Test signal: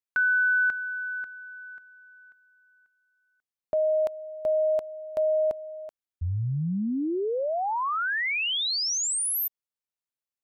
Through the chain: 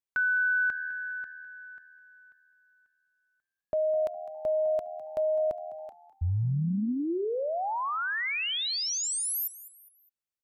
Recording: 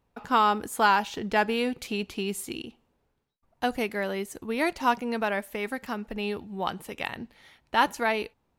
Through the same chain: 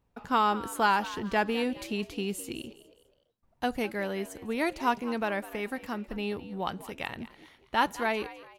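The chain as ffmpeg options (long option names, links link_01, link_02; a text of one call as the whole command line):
ffmpeg -i in.wav -filter_complex "[0:a]lowshelf=frequency=210:gain=5,asplit=2[link_01][link_02];[link_02]asplit=3[link_03][link_04][link_05];[link_03]adelay=205,afreqshift=80,volume=-16.5dB[link_06];[link_04]adelay=410,afreqshift=160,volume=-24.9dB[link_07];[link_05]adelay=615,afreqshift=240,volume=-33.3dB[link_08];[link_06][link_07][link_08]amix=inputs=3:normalize=0[link_09];[link_01][link_09]amix=inputs=2:normalize=0,volume=-3.5dB" out.wav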